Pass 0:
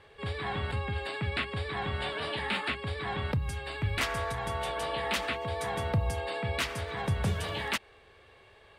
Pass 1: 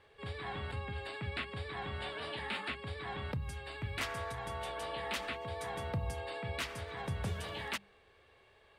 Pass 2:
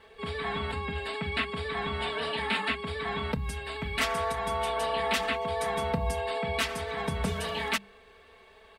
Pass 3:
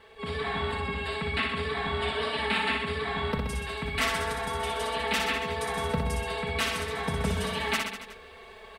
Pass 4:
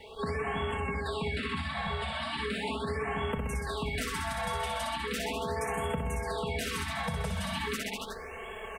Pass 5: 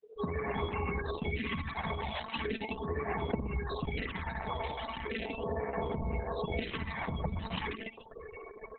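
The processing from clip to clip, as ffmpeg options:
ffmpeg -i in.wav -af "bandreject=frequency=50:width_type=h:width=6,bandreject=frequency=100:width_type=h:width=6,bandreject=frequency=150:width_type=h:width=6,bandreject=frequency=200:width_type=h:width=6,volume=-7dB" out.wav
ffmpeg -i in.wav -af "aecho=1:1:4.5:0.88,volume=6.5dB" out.wav
ffmpeg -i in.wav -af "areverse,acompressor=mode=upward:threshold=-42dB:ratio=2.5,areverse,aecho=1:1:60|126|198.6|278.5|366.3:0.631|0.398|0.251|0.158|0.1" out.wav
ffmpeg -i in.wav -filter_complex "[0:a]acrossover=split=410|890|6000[link_01][link_02][link_03][link_04];[link_03]alimiter=level_in=3.5dB:limit=-24dB:level=0:latency=1:release=237,volume=-3.5dB[link_05];[link_01][link_02][link_05][link_04]amix=inputs=4:normalize=0,acompressor=threshold=-36dB:ratio=6,afftfilt=real='re*(1-between(b*sr/1024,300*pow(4900/300,0.5+0.5*sin(2*PI*0.38*pts/sr))/1.41,300*pow(4900/300,0.5+0.5*sin(2*PI*0.38*pts/sr))*1.41))':imag='im*(1-between(b*sr/1024,300*pow(4900/300,0.5+0.5*sin(2*PI*0.38*pts/sr))/1.41,300*pow(4900/300,0.5+0.5*sin(2*PI*0.38*pts/sr))*1.41))':win_size=1024:overlap=0.75,volume=6.5dB" out.wav
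ffmpeg -i in.wav -af "equalizer=frequency=1400:width=5.1:gain=-8.5,afftfilt=real='re*gte(hypot(re,im),0.0251)':imag='im*gte(hypot(re,im),0.0251)':win_size=1024:overlap=0.75" -ar 48000 -c:a libopus -b:a 6k out.opus

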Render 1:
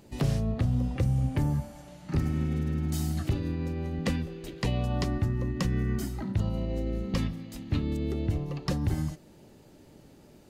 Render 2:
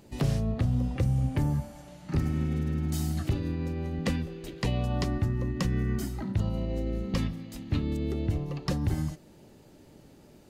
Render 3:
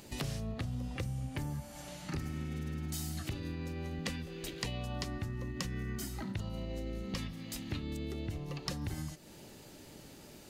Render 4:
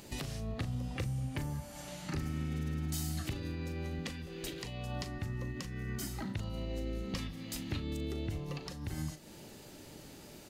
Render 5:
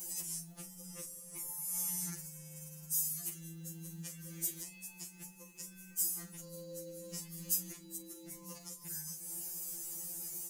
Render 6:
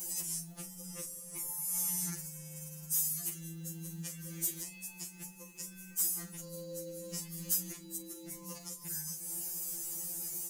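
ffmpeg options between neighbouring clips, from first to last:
ffmpeg -i in.wav -af anull out.wav
ffmpeg -i in.wav -af "tiltshelf=frequency=1300:gain=-5,acompressor=threshold=-43dB:ratio=3,volume=4.5dB" out.wav
ffmpeg -i in.wav -filter_complex "[0:a]alimiter=level_in=2dB:limit=-24dB:level=0:latency=1:release=332,volume=-2dB,asplit=2[link_01][link_02];[link_02]adelay=39,volume=-12dB[link_03];[link_01][link_03]amix=inputs=2:normalize=0,volume=1dB" out.wav
ffmpeg -i in.wav -af "alimiter=level_in=9.5dB:limit=-24dB:level=0:latency=1:release=177,volume=-9.5dB,aexciter=amount=13.5:drive=6:freq=6000,afftfilt=real='re*2.83*eq(mod(b,8),0)':imag='im*2.83*eq(mod(b,8),0)':win_size=2048:overlap=0.75,volume=-4dB" out.wav
ffmpeg -i in.wav -af "asoftclip=type=tanh:threshold=-25.5dB,volume=3.5dB" out.wav

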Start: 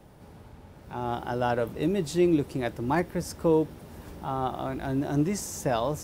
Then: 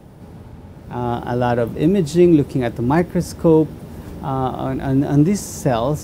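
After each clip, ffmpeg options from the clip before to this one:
ffmpeg -i in.wav -af "equalizer=frequency=160:width=0.4:gain=7,volume=5.5dB" out.wav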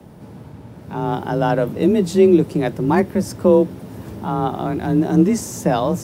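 ffmpeg -i in.wav -af "afreqshift=28" out.wav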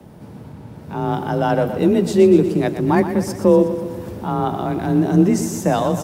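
ffmpeg -i in.wav -af "aecho=1:1:122|244|366|488|610|732|854:0.299|0.176|0.104|0.0613|0.0362|0.0213|0.0126" out.wav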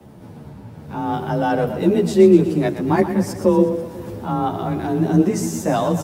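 ffmpeg -i in.wav -filter_complex "[0:a]asplit=2[link_01][link_02];[link_02]adelay=10.6,afreqshift=-2.3[link_03];[link_01][link_03]amix=inputs=2:normalize=1,volume=2dB" out.wav

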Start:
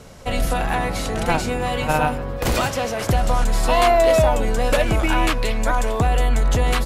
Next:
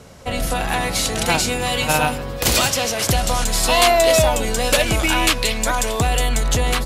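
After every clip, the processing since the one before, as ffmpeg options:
ffmpeg -i in.wav -filter_complex "[0:a]highpass=42,acrossover=split=2800[link_01][link_02];[link_02]dynaudnorm=framelen=260:gausssize=5:maxgain=12dB[link_03];[link_01][link_03]amix=inputs=2:normalize=0" out.wav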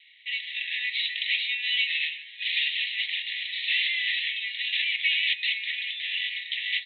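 ffmpeg -i in.wav -af "aeval=exprs='0.188*(abs(mod(val(0)/0.188+3,4)-2)-1)':channel_layout=same,asuperpass=centerf=2700:order=20:qfactor=1.3,volume=1dB" out.wav

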